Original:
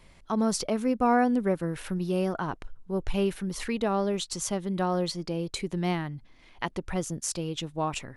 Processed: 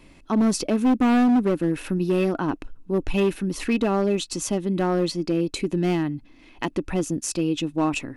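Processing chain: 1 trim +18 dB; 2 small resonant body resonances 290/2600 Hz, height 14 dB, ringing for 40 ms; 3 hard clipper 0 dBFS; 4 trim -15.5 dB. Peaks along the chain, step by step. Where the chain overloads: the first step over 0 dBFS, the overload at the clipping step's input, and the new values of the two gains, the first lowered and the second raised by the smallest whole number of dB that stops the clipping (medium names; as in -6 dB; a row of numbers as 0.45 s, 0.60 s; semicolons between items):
+5.5 dBFS, +9.0 dBFS, 0.0 dBFS, -15.5 dBFS; step 1, 9.0 dB; step 1 +9 dB, step 4 -6.5 dB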